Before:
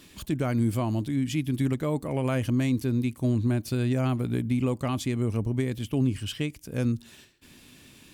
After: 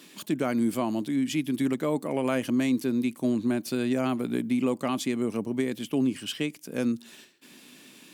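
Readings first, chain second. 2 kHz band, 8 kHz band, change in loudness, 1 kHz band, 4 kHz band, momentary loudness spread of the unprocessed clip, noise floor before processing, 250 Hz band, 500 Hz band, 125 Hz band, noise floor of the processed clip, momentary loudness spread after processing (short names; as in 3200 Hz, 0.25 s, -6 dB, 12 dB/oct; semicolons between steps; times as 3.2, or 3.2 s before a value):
+2.0 dB, +2.0 dB, -0.5 dB, +2.0 dB, +2.0 dB, 4 LU, -54 dBFS, +1.5 dB, +2.0 dB, -11.5 dB, -53 dBFS, 4 LU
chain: HPF 190 Hz 24 dB/oct; gain +2 dB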